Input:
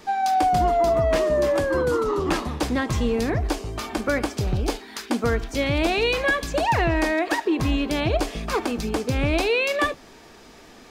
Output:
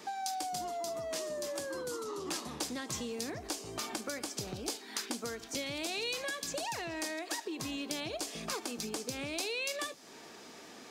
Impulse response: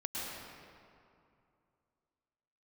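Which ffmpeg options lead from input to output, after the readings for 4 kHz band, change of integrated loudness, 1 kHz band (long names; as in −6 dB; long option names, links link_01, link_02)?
−7.0 dB, −14.5 dB, −17.0 dB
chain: -filter_complex "[0:a]highpass=170,equalizer=frequency=7100:width_type=o:width=1.5:gain=4,acrossover=split=4100[link_01][link_02];[link_01]acompressor=threshold=-34dB:ratio=6[link_03];[link_03][link_02]amix=inputs=2:normalize=0,volume=-4dB"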